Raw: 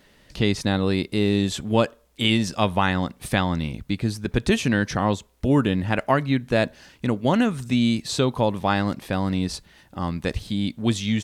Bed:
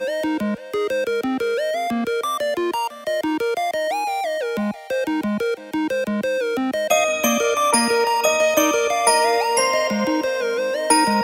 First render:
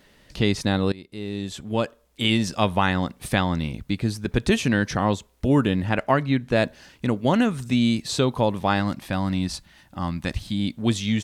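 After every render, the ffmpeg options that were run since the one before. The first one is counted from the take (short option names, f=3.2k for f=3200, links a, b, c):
-filter_complex "[0:a]asettb=1/sr,asplit=3[a][b][c];[a]atrim=end=5.894[d];[b]atrim=start=5.89:end=6.57,asetpts=PTS-STARTPTS,afade=t=in:d=0.004:c=qsin,afade=t=out:st=0.676:d=0.004:c=qsin,highshelf=f=8k:g=-7[e];[c]atrim=start=6.566[f];[d][e]acrossfade=d=0.004:c1=hsin:c2=qsin[g];[g][f]acrossfade=d=0.004:c1=qsin:c2=hsin,asettb=1/sr,asplit=3[h][i][j];[h]atrim=end=8.804[k];[i]atrim=start=8.8:end=10.6,asetpts=PTS-STARTPTS,afade=t=in:d=0.004:c=qsin,afade=t=out:st=1.796:d=0.004:c=qsin,equalizer=f=440:w=4.4:g=-14[l];[j]atrim=start=10.596[m];[k][l]acrossfade=d=0.004:c1=hsin:c2=qsin[n];[n][m]acrossfade=d=0.004:c1=qsin:c2=hsin,asplit=2[o][p];[o]atrim=end=0.92,asetpts=PTS-STARTPTS,afade=t=out:st=0.916:d=0.004:c=hsin:silence=0.0891251[q];[p]atrim=start=0.92,asetpts=PTS-STARTPTS,afade=t=in:d=1.54:silence=0.0891251[r];[q][r]concat=n=2:v=0:a=1"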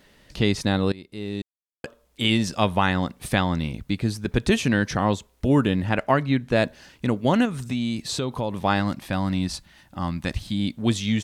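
-filter_complex "[0:a]asettb=1/sr,asplit=3[a][b][c];[a]atrim=end=7.454[d];[b]atrim=start=7.45:end=8.63,asetpts=PTS-STARTPTS,afade=t=in:d=0.004:c=qsin,afade=t=out:st=1.176:d=0.004:c=qsin,acompressor=threshold=-24dB:ratio=2.5:attack=3.2:release=140:knee=1:detection=peak[e];[c]atrim=start=8.626[f];[d][e]acrossfade=d=0.004:c1=hsin:c2=qsin[g];[g][f]acrossfade=d=0.004:c1=qsin:c2=hsin,asplit=3[h][i][j];[h]atrim=end=1.42,asetpts=PTS-STARTPTS,afade=t=out:st=1.416:d=0.004:c=hsin[k];[i]atrim=start=1.42:end=1.84,asetpts=PTS-STARTPTS,volume=0[l];[j]atrim=start=1.84,asetpts=PTS-STARTPTS,afade=t=in:d=0.004:c=hsin[m];[k][l][m]concat=n=3:v=0:a=1"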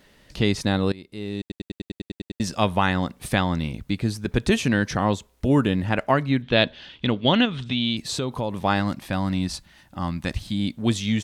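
-filter_complex "[0:a]asettb=1/sr,asplit=3[a][b][c];[a]atrim=end=6.424[d];[b]atrim=start=6.42:end=7.97,asetpts=PTS-STARTPTS,afade=t=in:d=0.004:c=qsin,afade=t=out:st=1.546:d=0.004:c=qsin,lowpass=f=3.4k:t=q:w=5.5[e];[c]atrim=start=7.966[f];[d][e]acrossfade=d=0.004:c1=hsin:c2=qsin[g];[g][f]acrossfade=d=0.004:c1=qsin:c2=hsin,asplit=11[h][i][j][k][l][m][n][o][p][q][r];[h]atrim=end=1.502[s];[i]atrim=start=1.398:end=1.502[t];[j]atrim=start=1.398:end=1.502[u];[k]atrim=start=1.398:end=1.502[v];[l]atrim=start=1.398:end=1.502[w];[m]atrim=start=1.398:end=1.502[x];[n]atrim=start=1.398:end=1.502[y];[o]atrim=start=1.398:end=1.502[z];[p]atrim=start=1.398:end=1.502[aa];[q]atrim=start=1.398:end=1.502[ab];[r]atrim=start=2.398[ac];[s][t]acrossfade=d=0.004:c1=hsin:c2=hsin[ad];[ad][u]acrossfade=d=0.004:c1=hsin:c2=hsin[ae];[ae][v]acrossfade=d=0.004:c1=hsin:c2=hsin[af];[af][w]acrossfade=d=0.004:c1=hsin:c2=hsin[ag];[ag][x]acrossfade=d=0.004:c1=hsin:c2=hsin[ah];[ah][y]acrossfade=d=0.004:c1=hsin:c2=hsin[ai];[ai][z]acrossfade=d=0.004:c1=hsin:c2=hsin[aj];[aj][aa]acrossfade=d=0.004:c1=hsin:c2=hsin[ak];[ak][ab]acrossfade=d=0.004:c1=hsin:c2=hsin[al];[al][ac]acrossfade=d=0.004:c1=hsin:c2=hsin"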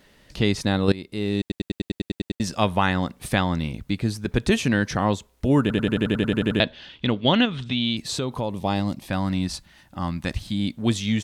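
-filter_complex "[0:a]asettb=1/sr,asplit=3[a][b][c];[a]atrim=end=0.884[d];[b]atrim=start=0.88:end=2.35,asetpts=PTS-STARTPTS,afade=t=in:d=0.004:c=qsin,afade=t=out:st=1.466:d=0.004:c=qsin,acontrast=52[e];[c]atrim=start=2.346[f];[d][e]acrossfade=d=0.004:c1=hsin:c2=qsin[g];[g][f]acrossfade=d=0.004:c1=qsin:c2=hsin,asettb=1/sr,asplit=3[h][i][j];[h]atrim=end=8.514[k];[i]atrim=start=8.51:end=9.08,asetpts=PTS-STARTPTS,afade=t=in:d=0.004:c=qsin,afade=t=out:st=0.566:d=0.004:c=qsin,equalizer=f=1.5k:t=o:w=0.98:g=-12.5[l];[j]atrim=start=9.076[m];[k][l]acrossfade=d=0.004:c1=hsin:c2=qsin[n];[n][m]acrossfade=d=0.004:c1=qsin:c2=hsin,asplit=12[o][p][q][r][s][t][u][v][w][x][y][z];[o]atrim=end=5.702[aa];[p]atrim=start=5.608:end=5.702[ab];[q]atrim=start=5.608:end=5.702[ac];[r]atrim=start=5.608:end=5.702[ad];[s]atrim=start=5.608:end=5.702[ae];[t]atrim=start=5.608:end=5.702[af];[u]atrim=start=5.608:end=5.702[ag];[v]atrim=start=5.608:end=5.702[ah];[w]atrim=start=5.608:end=5.702[ai];[x]atrim=start=5.608:end=5.702[aj];[y]atrim=start=5.608:end=5.702[ak];[z]atrim=start=6.598[al];[aa][ab]acrossfade=d=0.004:c1=hsin:c2=hsin[am];[am][ac]acrossfade=d=0.004:c1=hsin:c2=hsin[an];[an][ad]acrossfade=d=0.004:c1=hsin:c2=hsin[ao];[ao][ae]acrossfade=d=0.004:c1=hsin:c2=hsin[ap];[ap][af]acrossfade=d=0.004:c1=hsin:c2=hsin[aq];[aq][ag]acrossfade=d=0.004:c1=hsin:c2=hsin[ar];[ar][ah]acrossfade=d=0.004:c1=hsin:c2=hsin[as];[as][ai]acrossfade=d=0.004:c1=hsin:c2=hsin[at];[at][aj]acrossfade=d=0.004:c1=hsin:c2=hsin[au];[au][ak]acrossfade=d=0.004:c1=hsin:c2=hsin[av];[av][al]acrossfade=d=0.004:c1=hsin:c2=hsin"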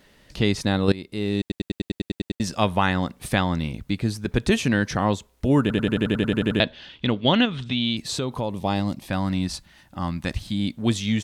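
-af anull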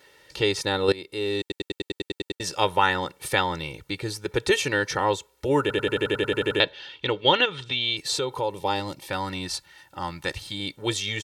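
-af "highpass=f=380:p=1,aecho=1:1:2.2:0.87"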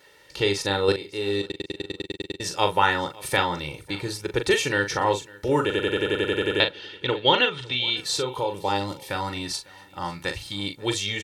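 -filter_complex "[0:a]asplit=2[a][b];[b]adelay=40,volume=-7.5dB[c];[a][c]amix=inputs=2:normalize=0,aecho=1:1:551|1102:0.0708|0.0177"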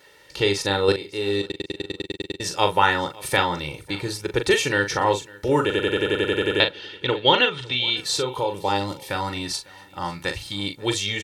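-af "volume=2dB"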